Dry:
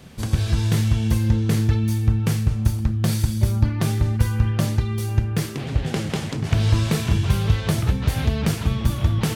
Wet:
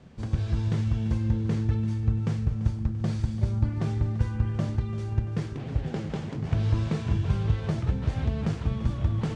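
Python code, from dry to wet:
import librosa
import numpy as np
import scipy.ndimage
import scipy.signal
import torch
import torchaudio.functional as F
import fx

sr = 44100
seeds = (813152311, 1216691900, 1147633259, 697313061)

y = fx.cvsd(x, sr, bps=64000)
y = scipy.signal.sosfilt(scipy.signal.butter(4, 7700.0, 'lowpass', fs=sr, output='sos'), y)
y = fx.high_shelf(y, sr, hz=2100.0, db=-11.5)
y = fx.echo_feedback(y, sr, ms=340, feedback_pct=56, wet_db=-14.5)
y = y * librosa.db_to_amplitude(-6.0)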